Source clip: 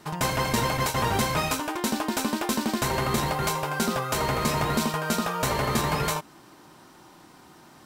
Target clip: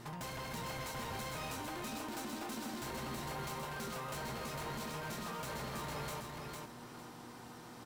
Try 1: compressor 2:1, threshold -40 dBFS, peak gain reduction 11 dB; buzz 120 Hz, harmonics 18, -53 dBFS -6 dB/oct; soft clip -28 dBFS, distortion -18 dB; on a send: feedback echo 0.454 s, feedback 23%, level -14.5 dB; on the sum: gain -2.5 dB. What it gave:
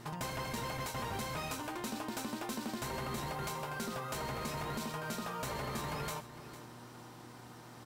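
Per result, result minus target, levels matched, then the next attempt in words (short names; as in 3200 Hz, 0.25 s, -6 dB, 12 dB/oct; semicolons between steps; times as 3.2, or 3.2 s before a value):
echo-to-direct -10.5 dB; soft clip: distortion -10 dB
compressor 2:1, threshold -40 dBFS, peak gain reduction 11 dB; buzz 120 Hz, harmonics 18, -53 dBFS -6 dB/oct; soft clip -28 dBFS, distortion -18 dB; on a send: feedback echo 0.454 s, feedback 23%, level -4 dB; on the sum: gain -2.5 dB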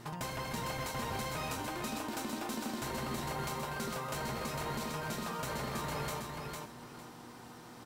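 soft clip: distortion -10 dB
compressor 2:1, threshold -40 dBFS, peak gain reduction 11 dB; buzz 120 Hz, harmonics 18, -53 dBFS -6 dB/oct; soft clip -37.5 dBFS, distortion -9 dB; on a send: feedback echo 0.454 s, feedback 23%, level -4 dB; on the sum: gain -2.5 dB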